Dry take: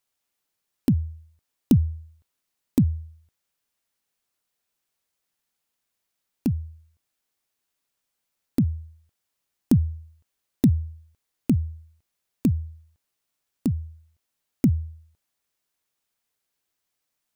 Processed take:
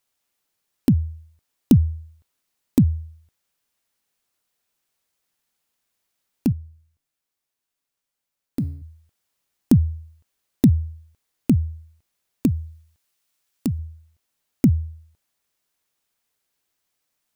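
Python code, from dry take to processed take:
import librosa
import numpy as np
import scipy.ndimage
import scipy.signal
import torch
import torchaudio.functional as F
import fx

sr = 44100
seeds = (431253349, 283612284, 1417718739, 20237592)

y = fx.comb_fb(x, sr, f0_hz=140.0, decay_s=0.73, harmonics='all', damping=0.0, mix_pct=60, at=(6.52, 8.82))
y = fx.tilt_shelf(y, sr, db=-3.5, hz=1200.0, at=(12.46, 13.79))
y = y * librosa.db_to_amplitude(3.5)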